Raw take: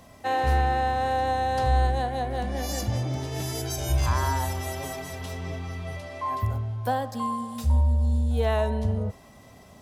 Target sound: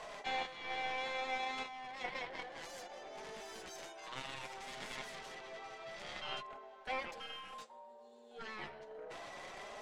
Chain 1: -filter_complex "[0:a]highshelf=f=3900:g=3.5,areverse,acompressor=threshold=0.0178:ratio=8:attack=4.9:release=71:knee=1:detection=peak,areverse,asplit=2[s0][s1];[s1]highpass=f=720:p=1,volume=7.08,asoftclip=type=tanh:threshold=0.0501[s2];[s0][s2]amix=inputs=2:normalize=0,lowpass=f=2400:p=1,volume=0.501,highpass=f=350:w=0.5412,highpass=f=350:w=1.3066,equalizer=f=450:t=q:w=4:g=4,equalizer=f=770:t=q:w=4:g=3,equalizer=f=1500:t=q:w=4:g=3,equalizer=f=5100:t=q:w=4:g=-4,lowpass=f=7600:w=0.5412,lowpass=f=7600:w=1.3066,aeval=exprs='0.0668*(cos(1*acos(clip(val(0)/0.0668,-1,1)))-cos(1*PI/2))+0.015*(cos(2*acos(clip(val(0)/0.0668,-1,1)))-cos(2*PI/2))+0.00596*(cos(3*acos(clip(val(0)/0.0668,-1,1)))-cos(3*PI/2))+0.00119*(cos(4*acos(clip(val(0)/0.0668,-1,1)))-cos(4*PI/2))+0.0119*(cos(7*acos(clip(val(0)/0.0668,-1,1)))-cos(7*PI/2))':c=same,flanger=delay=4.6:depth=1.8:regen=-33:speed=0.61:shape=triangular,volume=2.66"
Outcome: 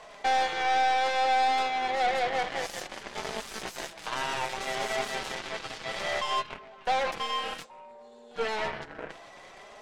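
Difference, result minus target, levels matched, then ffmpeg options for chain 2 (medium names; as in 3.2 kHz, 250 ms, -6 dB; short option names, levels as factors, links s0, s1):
compression: peak gain reduction -9.5 dB
-filter_complex "[0:a]highshelf=f=3900:g=3.5,areverse,acompressor=threshold=0.00501:ratio=8:attack=4.9:release=71:knee=1:detection=peak,areverse,asplit=2[s0][s1];[s1]highpass=f=720:p=1,volume=7.08,asoftclip=type=tanh:threshold=0.0501[s2];[s0][s2]amix=inputs=2:normalize=0,lowpass=f=2400:p=1,volume=0.501,highpass=f=350:w=0.5412,highpass=f=350:w=1.3066,equalizer=f=450:t=q:w=4:g=4,equalizer=f=770:t=q:w=4:g=3,equalizer=f=1500:t=q:w=4:g=3,equalizer=f=5100:t=q:w=4:g=-4,lowpass=f=7600:w=0.5412,lowpass=f=7600:w=1.3066,aeval=exprs='0.0668*(cos(1*acos(clip(val(0)/0.0668,-1,1)))-cos(1*PI/2))+0.015*(cos(2*acos(clip(val(0)/0.0668,-1,1)))-cos(2*PI/2))+0.00596*(cos(3*acos(clip(val(0)/0.0668,-1,1)))-cos(3*PI/2))+0.00119*(cos(4*acos(clip(val(0)/0.0668,-1,1)))-cos(4*PI/2))+0.0119*(cos(7*acos(clip(val(0)/0.0668,-1,1)))-cos(7*PI/2))':c=same,flanger=delay=4.6:depth=1.8:regen=-33:speed=0.61:shape=triangular,volume=2.66"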